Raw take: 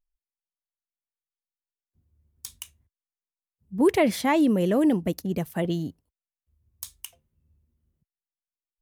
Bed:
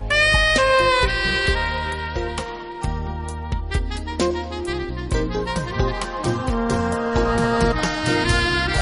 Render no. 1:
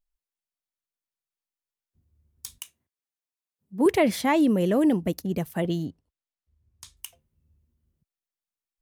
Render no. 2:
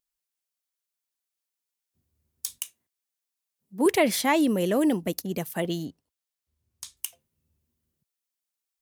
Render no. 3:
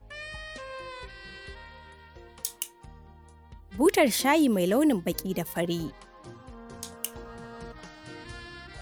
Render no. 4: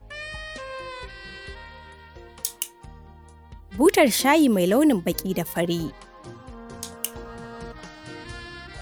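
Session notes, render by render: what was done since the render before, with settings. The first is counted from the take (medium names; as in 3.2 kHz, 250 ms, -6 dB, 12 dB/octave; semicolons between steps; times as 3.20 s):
2.58–3.86 s: high-pass 220 Hz; 5.85–6.97 s: distance through air 64 m
high-pass 230 Hz 6 dB/octave; treble shelf 3.4 kHz +7.5 dB
add bed -24 dB
trim +4.5 dB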